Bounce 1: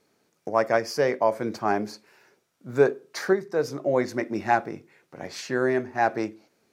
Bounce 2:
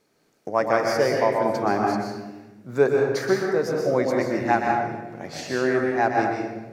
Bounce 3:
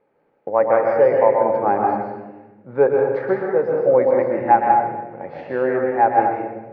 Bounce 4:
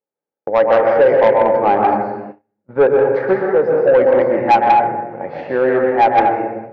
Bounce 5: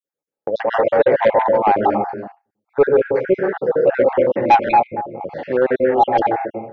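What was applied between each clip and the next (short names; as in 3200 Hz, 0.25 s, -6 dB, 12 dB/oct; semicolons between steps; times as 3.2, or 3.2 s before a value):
reverb RT60 1.1 s, pre-delay 0.124 s, DRR -0.5 dB
LPF 2400 Hz 24 dB/oct; small resonant body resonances 530/830 Hz, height 13 dB, ringing for 30 ms; gain -2.5 dB
gate -36 dBFS, range -32 dB; low shelf 110 Hz -5 dB; soft clip -11.5 dBFS, distortion -14 dB; gain +6.5 dB
random spectral dropouts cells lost 41%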